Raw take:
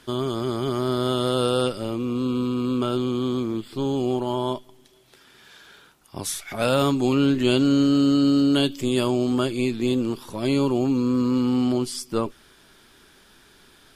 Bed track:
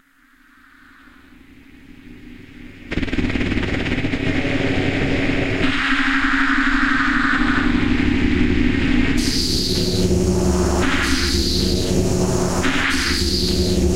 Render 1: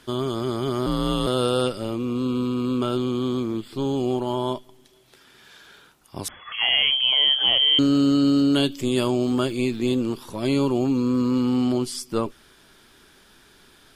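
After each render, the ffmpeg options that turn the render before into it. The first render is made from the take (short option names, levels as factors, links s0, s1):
-filter_complex "[0:a]asettb=1/sr,asplit=3[s0][s1][s2];[s0]atrim=end=0.864[s3];[s1]atrim=start=0.86:end=1.27,asetpts=PTS-STARTPTS,afade=t=in:d=0.004:c=qsin,afade=t=out:st=0.406:d=0.004:c=qsin,afreqshift=-86[s4];[s2]atrim=start=1.266[s5];[s3][s4]acrossfade=d=0.004:c1=hsin:c2=qsin[s6];[s6][s5]acrossfade=d=0.004:c1=qsin:c2=hsin,asettb=1/sr,asplit=3[s7][s8][s9];[s7]atrim=end=6.284[s10];[s8]atrim=start=6.28:end=7.79,asetpts=PTS-STARTPTS,afade=t=in:d=0.004:c=qsin,afade=t=out:st=1.506:d=0.004:c=qsin,lowpass=f=2900:t=q:w=0.5098,lowpass=f=2900:t=q:w=0.6013,lowpass=f=2900:t=q:w=0.9,lowpass=f=2900:t=q:w=2.563,afreqshift=-3400[s11];[s9]atrim=start=7.786[s12];[s10][s11]acrossfade=d=0.004:c1=hsin:c2=qsin[s13];[s13][s12]acrossfade=d=0.004:c1=qsin:c2=hsin,asettb=1/sr,asplit=3[s14][s15][s16];[s14]atrim=end=9.234[s17];[s15]atrim=start=9.23:end=9.79,asetpts=PTS-STARTPTS,afade=t=in:d=0.004:c=qsin,afade=t=out:st=0.556:d=0.004:c=qsin,aeval=exprs='val(0)*gte(abs(val(0)),0.00398)':c=same[s18];[s16]atrim=start=9.786[s19];[s17][s18]acrossfade=d=0.004:c1=hsin:c2=qsin[s20];[s20][s19]acrossfade=d=0.004:c1=qsin:c2=hsin"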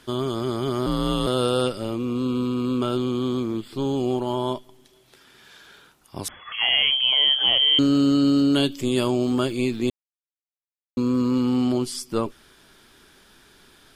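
-filter_complex "[0:a]asplit=3[s0][s1][s2];[s0]atrim=end=9.9,asetpts=PTS-STARTPTS,afade=t=out:st=9.896:d=0.004:c=hsin[s3];[s1]atrim=start=9.9:end=10.97,asetpts=PTS-STARTPTS,volume=0[s4];[s2]atrim=start=10.97,asetpts=PTS-STARTPTS,afade=t=in:d=0.004:c=hsin[s5];[s3][s4][s5]concat=n=3:v=0:a=1"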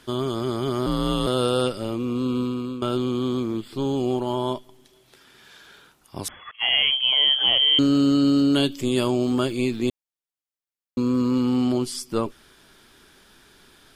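-filter_complex "[0:a]asettb=1/sr,asplit=3[s0][s1][s2];[s0]atrim=end=6.514[s3];[s1]atrim=start=6.51:end=7.28,asetpts=PTS-STARTPTS,afade=t=in:d=0.004:c=qsin,afade=t=out:st=0.766:d=0.004:c=qsin,agate=range=0.0224:threshold=0.0891:ratio=3:release=100:detection=peak[s4];[s2]atrim=start=7.276[s5];[s3][s4]acrossfade=d=0.004:c1=hsin:c2=qsin[s6];[s6][s5]acrossfade=d=0.004:c1=qsin:c2=hsin,asplit=2[s7][s8];[s7]atrim=end=2.82,asetpts=PTS-STARTPTS,afade=t=out:st=2.4:d=0.42:silence=0.281838[s9];[s8]atrim=start=2.82,asetpts=PTS-STARTPTS,afade=t=in:d=0.004:c=hsin:silence=0.281838[s10];[s9][s10]concat=n=2:v=0:a=1"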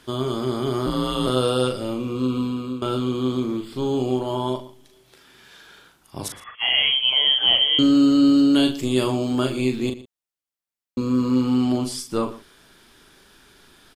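-filter_complex "[0:a]asplit=2[s0][s1];[s1]adelay=39,volume=0.501[s2];[s0][s2]amix=inputs=2:normalize=0,asplit=2[s3][s4];[s4]adelay=116.6,volume=0.158,highshelf=f=4000:g=-2.62[s5];[s3][s5]amix=inputs=2:normalize=0"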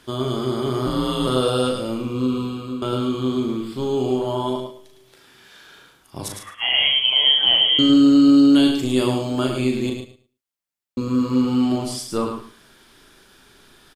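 -filter_complex "[0:a]asplit=2[s0][s1];[s1]adelay=31,volume=0.211[s2];[s0][s2]amix=inputs=2:normalize=0,aecho=1:1:107|214|321:0.473|0.0852|0.0153"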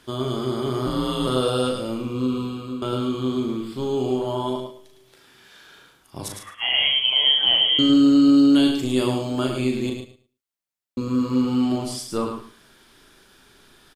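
-af "volume=0.794"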